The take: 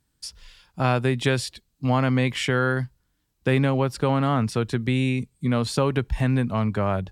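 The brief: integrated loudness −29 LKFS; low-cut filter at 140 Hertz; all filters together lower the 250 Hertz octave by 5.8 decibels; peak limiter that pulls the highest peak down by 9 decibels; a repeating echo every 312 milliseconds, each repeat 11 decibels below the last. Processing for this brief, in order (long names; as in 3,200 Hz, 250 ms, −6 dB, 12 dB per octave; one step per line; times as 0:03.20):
high-pass filter 140 Hz
parametric band 250 Hz −6 dB
brickwall limiter −18.5 dBFS
repeating echo 312 ms, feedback 28%, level −11 dB
level +1 dB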